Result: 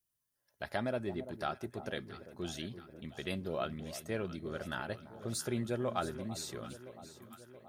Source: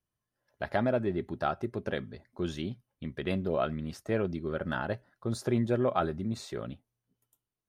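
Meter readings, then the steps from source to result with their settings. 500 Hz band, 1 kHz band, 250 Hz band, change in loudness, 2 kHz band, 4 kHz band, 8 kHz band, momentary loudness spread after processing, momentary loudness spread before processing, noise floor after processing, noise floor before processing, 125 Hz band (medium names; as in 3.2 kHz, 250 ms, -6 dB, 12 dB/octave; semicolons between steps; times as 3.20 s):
-7.0 dB, -6.0 dB, -7.5 dB, -6.5 dB, -4.5 dB, 0.0 dB, +5.5 dB, 13 LU, 11 LU, -84 dBFS, under -85 dBFS, -7.5 dB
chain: pre-emphasis filter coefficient 0.8; echo whose repeats swap between lows and highs 338 ms, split 1 kHz, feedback 76%, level -12 dB; trim +6 dB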